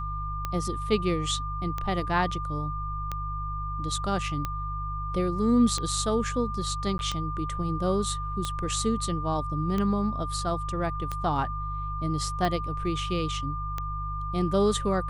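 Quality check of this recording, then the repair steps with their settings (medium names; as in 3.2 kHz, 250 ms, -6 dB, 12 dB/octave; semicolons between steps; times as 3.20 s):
hum 50 Hz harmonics 3 -34 dBFS
tick 45 rpm -16 dBFS
whine 1.2 kHz -33 dBFS
6.98–6.99 s: dropout 11 ms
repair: de-click; de-hum 50 Hz, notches 3; band-stop 1.2 kHz, Q 30; interpolate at 6.98 s, 11 ms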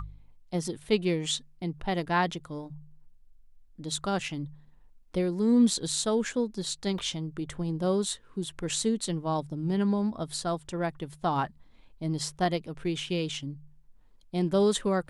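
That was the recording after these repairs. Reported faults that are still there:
nothing left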